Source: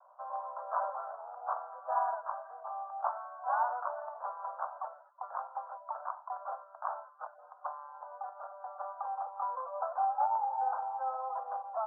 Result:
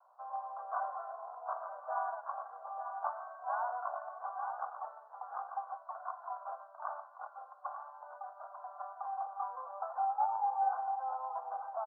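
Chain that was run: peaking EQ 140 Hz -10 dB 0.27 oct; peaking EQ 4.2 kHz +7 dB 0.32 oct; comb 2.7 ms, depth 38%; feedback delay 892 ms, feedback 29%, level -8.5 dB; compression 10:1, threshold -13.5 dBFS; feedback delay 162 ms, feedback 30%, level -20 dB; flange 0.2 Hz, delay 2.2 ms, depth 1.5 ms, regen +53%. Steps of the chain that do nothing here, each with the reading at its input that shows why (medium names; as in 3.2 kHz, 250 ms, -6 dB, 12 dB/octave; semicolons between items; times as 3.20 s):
peaking EQ 140 Hz: input has nothing below 480 Hz; peaking EQ 4.2 kHz: input has nothing above 1.7 kHz; compression, threshold -13.5 dBFS: peak at its input -17.5 dBFS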